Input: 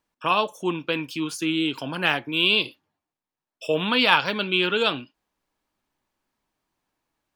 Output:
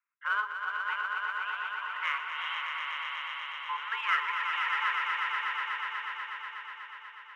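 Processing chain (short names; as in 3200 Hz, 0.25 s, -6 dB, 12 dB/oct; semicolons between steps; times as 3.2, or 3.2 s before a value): elliptic band-pass 580–2100 Hz, stop band 40 dB; in parallel at -9 dB: one-sided clip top -29 dBFS, bottom -14 dBFS; on the sum: frequency shift +410 Hz; swelling echo 0.122 s, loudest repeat 5, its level -6 dB; gain -9 dB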